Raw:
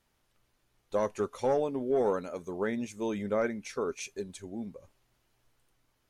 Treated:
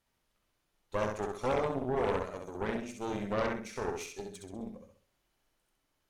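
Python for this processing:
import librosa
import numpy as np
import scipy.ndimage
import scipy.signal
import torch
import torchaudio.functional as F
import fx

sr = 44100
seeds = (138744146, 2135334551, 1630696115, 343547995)

y = fx.hum_notches(x, sr, base_hz=60, count=8)
y = fx.echo_feedback(y, sr, ms=65, feedback_pct=40, wet_db=-3.5)
y = fx.cheby_harmonics(y, sr, harmonics=(6,), levels_db=(-13,), full_scale_db=-14.5)
y = y * librosa.db_to_amplitude(-5.5)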